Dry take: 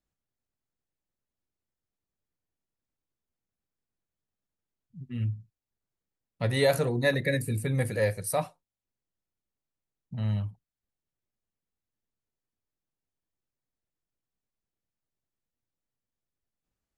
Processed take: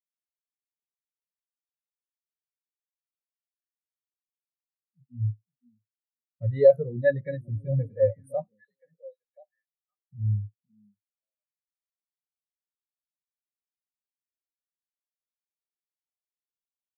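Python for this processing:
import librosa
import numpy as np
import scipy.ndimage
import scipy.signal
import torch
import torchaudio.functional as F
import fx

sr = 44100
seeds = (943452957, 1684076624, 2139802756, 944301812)

y = fx.echo_stepped(x, sr, ms=515, hz=230.0, octaves=1.4, feedback_pct=70, wet_db=-5.5)
y = fx.spectral_expand(y, sr, expansion=2.5)
y = y * 10.0 ** (5.5 / 20.0)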